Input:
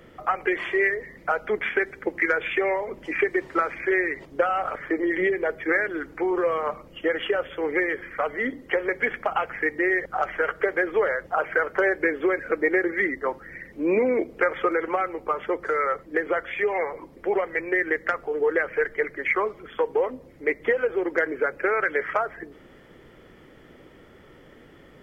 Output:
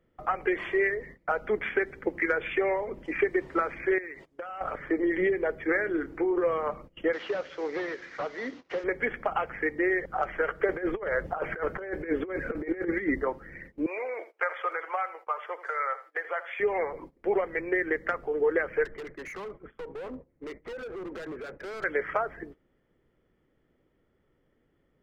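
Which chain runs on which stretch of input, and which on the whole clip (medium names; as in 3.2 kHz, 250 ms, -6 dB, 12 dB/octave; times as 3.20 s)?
3.98–4.61 s: tilt EQ +2 dB/octave + compression 3:1, threshold -35 dBFS + decimation joined by straight lines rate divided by 2×
5.81–6.42 s: peaking EQ 350 Hz +5.5 dB 0.61 oct + compression, threshold -21 dBFS + doubling 29 ms -13 dB
7.13–8.84 s: one-bit delta coder 32 kbps, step -39.5 dBFS + high-pass 490 Hz 6 dB/octave
10.69–13.27 s: bass shelf 270 Hz +4.5 dB + compressor with a negative ratio -26 dBFS, ratio -0.5
13.86–16.60 s: high-pass 650 Hz 24 dB/octave + feedback delay 81 ms, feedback 24%, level -14 dB
18.85–21.84 s: low-pass 2 kHz + compression 4:1, threshold -25 dBFS + overload inside the chain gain 33.5 dB
whole clip: gate -42 dBFS, range -19 dB; tilt EQ -1.5 dB/octave; trim -4 dB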